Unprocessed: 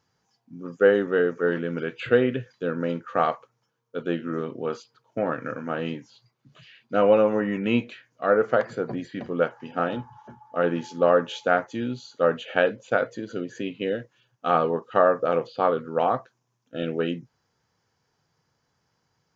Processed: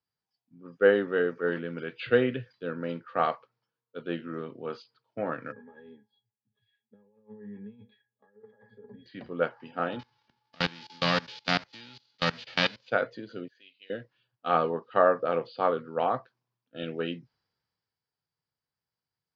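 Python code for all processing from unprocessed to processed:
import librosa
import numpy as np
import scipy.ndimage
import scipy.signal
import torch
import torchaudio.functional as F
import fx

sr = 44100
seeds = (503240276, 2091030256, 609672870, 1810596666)

y = fx.chain(x, sr, fx.highpass(hz=190.0, slope=6),
    fx.over_compress(threshold_db=-31.0, ratio=-1.0),
    fx.octave_resonator(note='G#', decay_s=0.12), at=(5.52, 9.06))
y = fx.envelope_flatten(y, sr, power=0.3, at=(9.99, 12.86), fade=0.02)
y = fx.level_steps(y, sr, step_db=21, at=(9.99, 12.86), fade=0.02)
y = fx.chain(y, sr, fx.env_lowpass(base_hz=2600.0, full_db=-29.0),
    fx.differentiator(), at=(13.48, 13.9))
y = scipy.signal.sosfilt(scipy.signal.ellip(4, 1.0, 60, 4800.0, 'lowpass', fs=sr, output='sos'), y)
y = fx.high_shelf(y, sr, hz=3600.0, db=8.0)
y = fx.band_widen(y, sr, depth_pct=40)
y = y * librosa.db_to_amplitude(-5.0)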